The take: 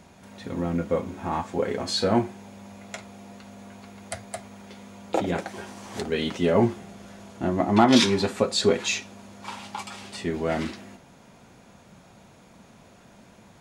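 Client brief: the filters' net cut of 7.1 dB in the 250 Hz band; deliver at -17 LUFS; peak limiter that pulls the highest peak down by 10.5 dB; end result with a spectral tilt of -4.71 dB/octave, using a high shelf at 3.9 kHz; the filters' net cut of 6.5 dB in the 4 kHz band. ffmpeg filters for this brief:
-af "equalizer=f=250:t=o:g=-9,highshelf=f=3900:g=-4.5,equalizer=f=4000:t=o:g=-5,volume=5.62,alimiter=limit=0.75:level=0:latency=1"

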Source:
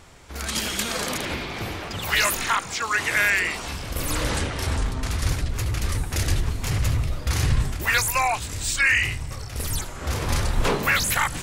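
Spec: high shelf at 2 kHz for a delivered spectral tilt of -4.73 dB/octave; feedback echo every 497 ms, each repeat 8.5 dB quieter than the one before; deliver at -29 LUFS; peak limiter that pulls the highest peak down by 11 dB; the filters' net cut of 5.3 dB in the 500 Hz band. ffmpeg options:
-af "equalizer=f=500:t=o:g=-6,highshelf=f=2000:g=-9,alimiter=limit=0.0891:level=0:latency=1,aecho=1:1:497|994|1491|1988:0.376|0.143|0.0543|0.0206,volume=1.19"

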